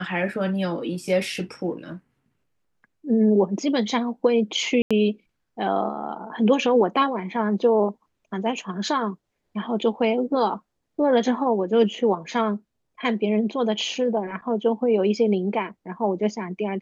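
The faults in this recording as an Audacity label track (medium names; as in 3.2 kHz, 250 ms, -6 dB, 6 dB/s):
4.820000	4.910000	dropout 86 ms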